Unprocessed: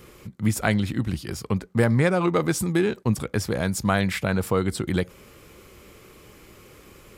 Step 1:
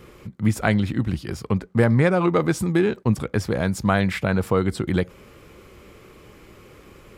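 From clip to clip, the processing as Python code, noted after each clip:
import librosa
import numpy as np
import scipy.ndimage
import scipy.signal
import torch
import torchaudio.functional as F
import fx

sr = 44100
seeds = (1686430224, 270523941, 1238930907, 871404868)

y = fx.high_shelf(x, sr, hz=4500.0, db=-9.5)
y = y * librosa.db_to_amplitude(2.5)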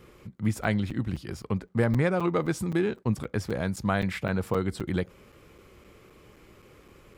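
y = fx.buffer_crackle(x, sr, first_s=0.38, period_s=0.26, block=256, kind='zero')
y = y * librosa.db_to_amplitude(-6.5)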